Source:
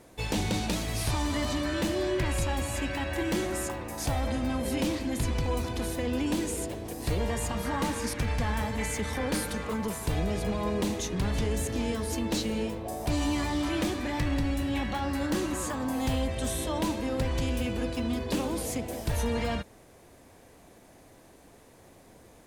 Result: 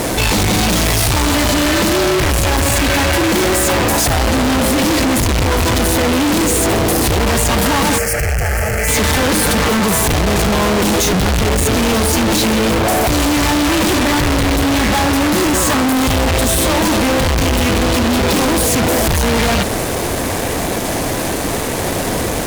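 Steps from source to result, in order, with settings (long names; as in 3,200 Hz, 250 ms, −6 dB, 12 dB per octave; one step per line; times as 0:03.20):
fuzz pedal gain 57 dB, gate −59 dBFS
0:07.98–0:08.88: phaser with its sweep stopped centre 1,000 Hz, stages 6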